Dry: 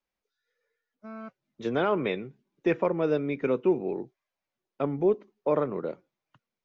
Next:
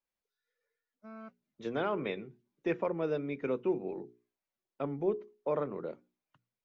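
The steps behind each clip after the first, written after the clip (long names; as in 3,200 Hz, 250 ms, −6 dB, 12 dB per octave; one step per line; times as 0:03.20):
mains-hum notches 60/120/180/240/300/360/420 Hz
level −6.5 dB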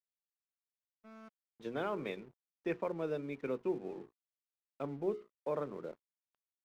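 dead-zone distortion −56 dBFS
level −4 dB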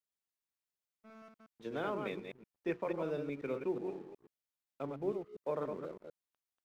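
delay that plays each chunk backwards 122 ms, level −5 dB
level −1 dB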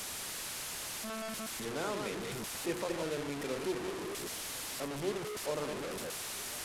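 linear delta modulator 64 kbit/s, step −33.5 dBFS
echo through a band-pass that steps 261 ms, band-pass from 2,600 Hz, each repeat −0.7 octaves, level −11 dB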